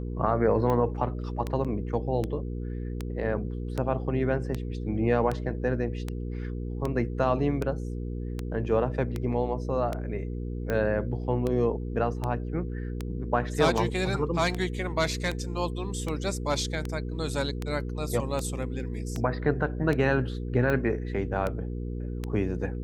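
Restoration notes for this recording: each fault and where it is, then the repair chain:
hum 60 Hz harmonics 8 -33 dBFS
tick 78 rpm -17 dBFS
1.64–1.65 s: dropout 6.8 ms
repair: de-click; de-hum 60 Hz, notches 8; interpolate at 1.64 s, 6.8 ms

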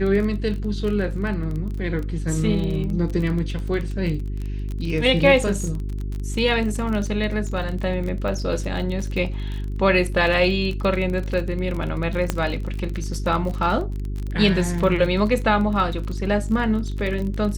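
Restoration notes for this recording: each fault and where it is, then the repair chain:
crackle 30 per s -27 dBFS
hum 50 Hz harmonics 8 -27 dBFS
12.30 s: pop -7 dBFS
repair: de-click; de-hum 50 Hz, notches 8

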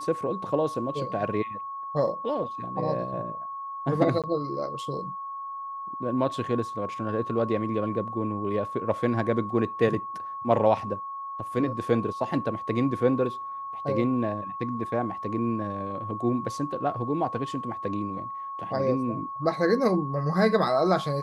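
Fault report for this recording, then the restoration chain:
whine 1.1 kHz -33 dBFS
4.22–4.24 s: dropout 17 ms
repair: band-stop 1.1 kHz, Q 30; interpolate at 4.22 s, 17 ms

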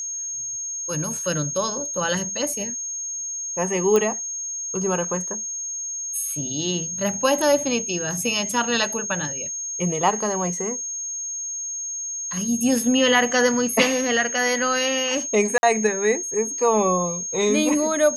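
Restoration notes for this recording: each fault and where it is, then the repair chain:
whine 6.5 kHz -27 dBFS
3.96 s: pop -9 dBFS
15.58–15.63 s: dropout 51 ms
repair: de-click; band-stop 6.5 kHz, Q 30; interpolate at 15.58 s, 51 ms

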